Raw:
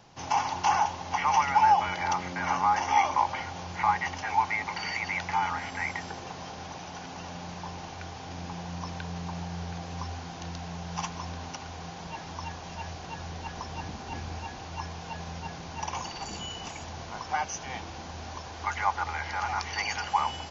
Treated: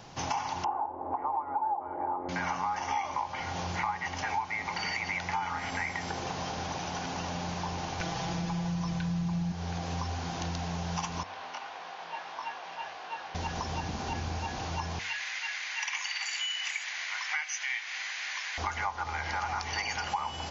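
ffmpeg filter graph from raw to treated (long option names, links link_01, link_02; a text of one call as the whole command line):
ffmpeg -i in.wav -filter_complex "[0:a]asettb=1/sr,asplit=3[link_01][link_02][link_03];[link_01]atrim=end=0.644[link_04];[link_02]atrim=start=0.64:end=2.29,asetpts=PTS-STARTPTS,afade=type=in:duration=0.004:curve=qsin,afade=type=out:start_time=1.646:duration=0.004:curve=qsin,lowpass=frequency=1000:width=0.5412,lowpass=frequency=1000:width=1.3066,lowshelf=frequency=240:width_type=q:width=3:gain=-9[link_05];[link_03]atrim=start=2.286[link_06];[link_04][link_05]acrossfade=duration=0.004:curve1=hsin:curve2=qsin[link_07];[link_07][link_06]acrossfade=duration=0.004:curve1=qsin:curve2=hsin,asettb=1/sr,asplit=3[link_08][link_09][link_10];[link_08]atrim=end=8.004[link_11];[link_09]atrim=start=8:end=9.52,asetpts=PTS-STARTPTS,afade=type=in:duration=0.004:curve=qsin,afade=type=out:start_time=1.516:duration=0.004:curve=qsin,asubboost=boost=9.5:cutoff=210,aecho=1:1:6:0.78,atrim=end_sample=67032,acompressor=mode=upward:threshold=-30dB:ratio=2.5:attack=3.2:release=140:knee=2.83:detection=peak[link_12];[link_10]atrim=start=9.516[link_13];[link_11][link_12]acrossfade=duration=0.004:curve1=hsin:curve2=qsin[link_14];[link_14][link_13]acrossfade=duration=0.004:curve1=qsin:curve2=hsin,asettb=1/sr,asplit=3[link_15][link_16][link_17];[link_15]atrim=end=11.234[link_18];[link_16]atrim=start=11.23:end=13.35,asetpts=PTS-STARTPTS,afade=type=in:duration=0.004:curve=qsin,afade=type=out:start_time=2.116:duration=0.004:curve=qsin,highpass=710,lowpass=3100,flanger=delay=19.5:depth=4.3:speed=1.6[link_19];[link_17]atrim=start=13.346[link_20];[link_18][link_19]acrossfade=duration=0.004:curve1=hsin:curve2=qsin[link_21];[link_21][link_20]acrossfade=duration=0.004:curve1=qsin:curve2=hsin,asettb=1/sr,asplit=3[link_22][link_23][link_24];[link_22]atrim=end=14.994[link_25];[link_23]atrim=start=14.99:end=18.58,asetpts=PTS-STARTPTS,afade=type=in:duration=0.004:curve=qsin,afade=type=out:start_time=3.586:duration=0.004:curve=qsin,highpass=frequency=2000:width_type=q:width=4.6,bandreject=frequency=5500:width=16[link_26];[link_24]atrim=start=18.576[link_27];[link_25][link_26]acrossfade=duration=0.004:curve1=hsin:curve2=qsin[link_28];[link_28][link_27]acrossfade=duration=0.004:curve1=qsin:curve2=hsin,bandreject=frequency=95:width_type=h:width=4,bandreject=frequency=190:width_type=h:width=4,bandreject=frequency=285:width_type=h:width=4,bandreject=frequency=380:width_type=h:width=4,bandreject=frequency=475:width_type=h:width=4,bandreject=frequency=570:width_type=h:width=4,bandreject=frequency=665:width_type=h:width=4,bandreject=frequency=760:width_type=h:width=4,bandreject=frequency=855:width_type=h:width=4,bandreject=frequency=950:width_type=h:width=4,bandreject=frequency=1045:width_type=h:width=4,bandreject=frequency=1140:width_type=h:width=4,bandreject=frequency=1235:width_type=h:width=4,bandreject=frequency=1330:width_type=h:width=4,bandreject=frequency=1425:width_type=h:width=4,bandreject=frequency=1520:width_type=h:width=4,bandreject=frequency=1615:width_type=h:width=4,bandreject=frequency=1710:width_type=h:width=4,bandreject=frequency=1805:width_type=h:width=4,bandreject=frequency=1900:width_type=h:width=4,bandreject=frequency=1995:width_type=h:width=4,bandreject=frequency=2090:width_type=h:width=4,bandreject=frequency=2185:width_type=h:width=4,bandreject=frequency=2280:width_type=h:width=4,bandreject=frequency=2375:width_type=h:width=4,bandreject=frequency=2470:width_type=h:width=4,bandreject=frequency=2565:width_type=h:width=4,bandreject=frequency=2660:width_type=h:width=4,bandreject=frequency=2755:width_type=h:width=4,bandreject=frequency=2850:width_type=h:width=4,bandreject=frequency=2945:width_type=h:width=4,acompressor=threshold=-37dB:ratio=5,volume=6.5dB" out.wav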